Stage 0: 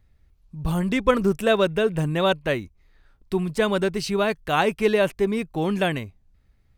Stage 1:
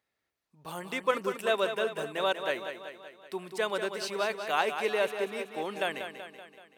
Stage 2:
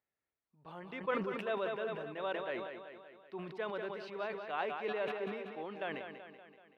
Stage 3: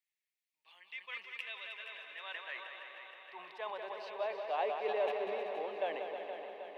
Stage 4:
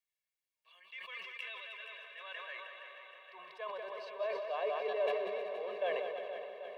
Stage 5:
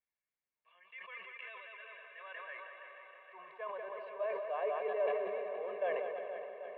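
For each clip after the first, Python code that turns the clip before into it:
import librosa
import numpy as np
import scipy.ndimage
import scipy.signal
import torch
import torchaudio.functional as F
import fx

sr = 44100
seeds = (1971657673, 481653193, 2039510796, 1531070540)

y1 = scipy.signal.sosfilt(scipy.signal.butter(2, 480.0, 'highpass', fs=sr, output='sos'), x)
y1 = fx.echo_feedback(y1, sr, ms=190, feedback_pct=56, wet_db=-8.5)
y1 = y1 * librosa.db_to_amplitude(-6.0)
y2 = fx.air_absorb(y1, sr, metres=340.0)
y2 = fx.sustainer(y2, sr, db_per_s=42.0)
y2 = y2 * librosa.db_to_amplitude(-8.0)
y3 = fx.filter_sweep_highpass(y2, sr, from_hz=2300.0, to_hz=530.0, start_s=1.54, end_s=4.66, q=1.8)
y3 = fx.peak_eq(y3, sr, hz=1400.0, db=-13.0, octaves=0.38)
y3 = fx.echo_heads(y3, sr, ms=157, heads='second and third', feedback_pct=66, wet_db=-10.0)
y4 = y3 + 0.95 * np.pad(y3, (int(1.8 * sr / 1000.0), 0))[:len(y3)]
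y4 = fx.sustainer(y4, sr, db_per_s=31.0)
y4 = y4 * librosa.db_to_amplitude(-5.5)
y5 = scipy.signal.sosfilt(scipy.signal.butter(4, 2300.0, 'lowpass', fs=sr, output='sos'), y4)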